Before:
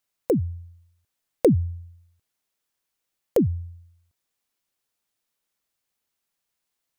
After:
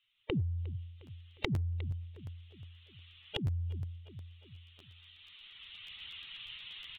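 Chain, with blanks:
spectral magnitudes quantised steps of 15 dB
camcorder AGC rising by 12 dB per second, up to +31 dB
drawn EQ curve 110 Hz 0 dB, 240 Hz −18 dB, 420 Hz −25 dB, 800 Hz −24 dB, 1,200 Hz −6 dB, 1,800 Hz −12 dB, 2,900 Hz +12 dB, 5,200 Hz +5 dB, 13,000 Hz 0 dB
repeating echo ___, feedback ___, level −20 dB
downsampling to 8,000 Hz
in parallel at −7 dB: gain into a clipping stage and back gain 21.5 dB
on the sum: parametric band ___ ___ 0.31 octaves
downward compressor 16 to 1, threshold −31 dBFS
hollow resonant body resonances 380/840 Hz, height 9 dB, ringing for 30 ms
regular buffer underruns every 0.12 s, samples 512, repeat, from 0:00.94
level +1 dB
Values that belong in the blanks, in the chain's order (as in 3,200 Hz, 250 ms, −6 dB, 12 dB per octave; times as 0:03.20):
357 ms, 52%, 1,900 Hz, +10.5 dB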